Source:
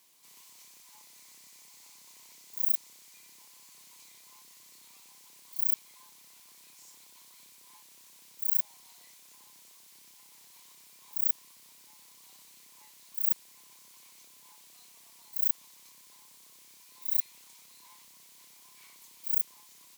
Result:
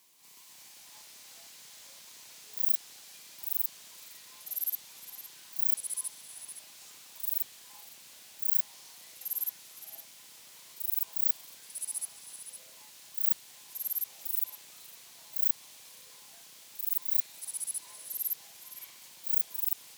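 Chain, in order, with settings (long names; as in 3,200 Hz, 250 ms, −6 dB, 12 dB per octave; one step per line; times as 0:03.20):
delay with pitch and tempo change per echo 191 ms, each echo −4 semitones, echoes 3
echo through a band-pass that steps 171 ms, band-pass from 3,300 Hz, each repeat 0.7 octaves, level −4 dB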